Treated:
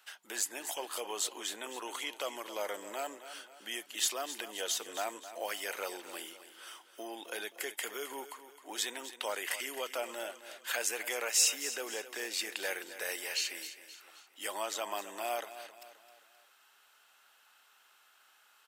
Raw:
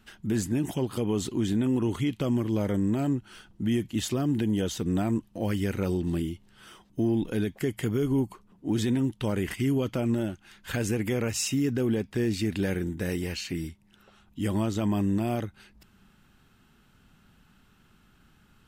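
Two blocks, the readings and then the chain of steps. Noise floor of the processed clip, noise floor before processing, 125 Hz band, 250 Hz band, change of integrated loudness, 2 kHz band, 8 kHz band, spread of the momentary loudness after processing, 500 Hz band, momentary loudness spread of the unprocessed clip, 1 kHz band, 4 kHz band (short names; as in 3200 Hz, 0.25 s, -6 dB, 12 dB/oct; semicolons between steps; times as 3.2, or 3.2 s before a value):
-65 dBFS, -62 dBFS, under -40 dB, -25.5 dB, -7.5 dB, +1.0 dB, +4.5 dB, 15 LU, -9.0 dB, 7 LU, 0.0 dB, +2.5 dB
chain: HPF 600 Hz 24 dB/oct; high shelf 4700 Hz +6 dB; feedback echo 0.263 s, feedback 45%, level -13 dB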